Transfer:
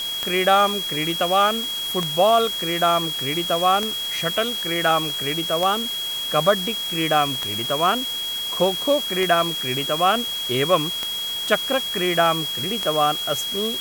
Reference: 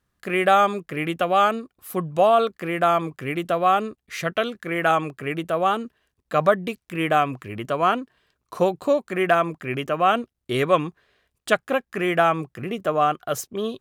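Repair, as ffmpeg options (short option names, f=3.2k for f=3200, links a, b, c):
-af "adeclick=t=4,bandreject=f=3.3k:w=30,afftdn=nr=30:nf=-27"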